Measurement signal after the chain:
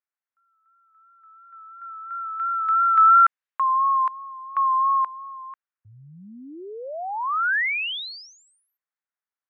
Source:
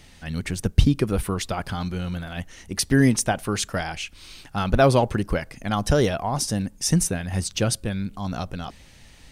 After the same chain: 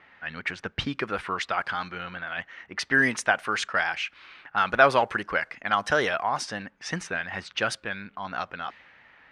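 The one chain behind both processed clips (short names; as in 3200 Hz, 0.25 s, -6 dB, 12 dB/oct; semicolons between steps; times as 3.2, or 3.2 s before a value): vibrato 2.9 Hz 39 cents; band-pass 1600 Hz, Q 1.5; low-pass opened by the level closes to 1700 Hz, open at -29.5 dBFS; gain +8 dB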